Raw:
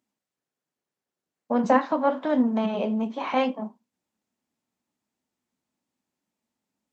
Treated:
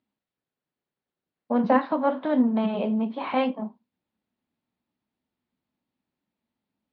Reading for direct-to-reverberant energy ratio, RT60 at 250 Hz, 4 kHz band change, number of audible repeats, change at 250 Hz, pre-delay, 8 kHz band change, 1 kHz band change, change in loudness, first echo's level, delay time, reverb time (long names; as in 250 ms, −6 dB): no reverb audible, no reverb audible, −1.5 dB, no echo audible, +1.0 dB, no reverb audible, can't be measured, −1.0 dB, 0.0 dB, no echo audible, no echo audible, no reverb audible